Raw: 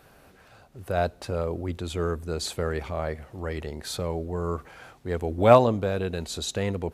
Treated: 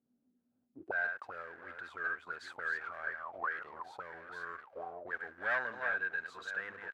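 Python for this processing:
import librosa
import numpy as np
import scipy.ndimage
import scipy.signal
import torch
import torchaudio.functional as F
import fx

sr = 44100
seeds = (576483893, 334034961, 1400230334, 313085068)

y = fx.reverse_delay(x, sr, ms=518, wet_db=-7.5)
y = fx.leveller(y, sr, passes=3)
y = fx.auto_wah(y, sr, base_hz=240.0, top_hz=1600.0, q=16.0, full_db=-15.5, direction='up')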